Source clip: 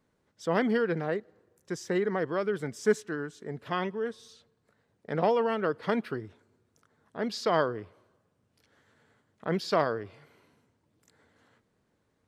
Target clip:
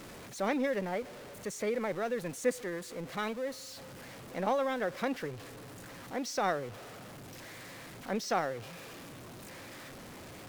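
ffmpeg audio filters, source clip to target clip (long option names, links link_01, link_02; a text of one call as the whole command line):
ffmpeg -i in.wav -af "aeval=exprs='val(0)+0.5*0.015*sgn(val(0))':channel_layout=same,asetrate=51597,aresample=44100,volume=-5.5dB" out.wav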